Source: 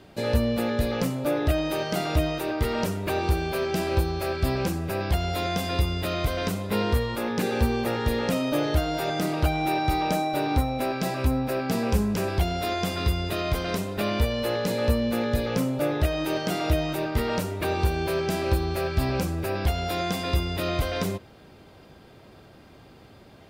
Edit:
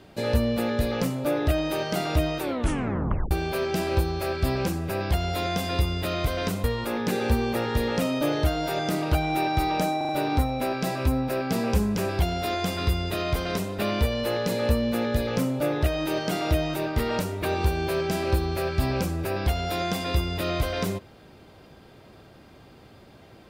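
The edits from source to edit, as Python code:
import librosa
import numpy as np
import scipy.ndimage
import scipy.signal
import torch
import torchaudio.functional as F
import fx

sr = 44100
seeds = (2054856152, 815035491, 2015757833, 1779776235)

y = fx.edit(x, sr, fx.tape_stop(start_s=2.4, length_s=0.91),
    fx.cut(start_s=6.64, length_s=0.31),
    fx.stutter(start_s=10.28, slice_s=0.04, count=4), tone=tone)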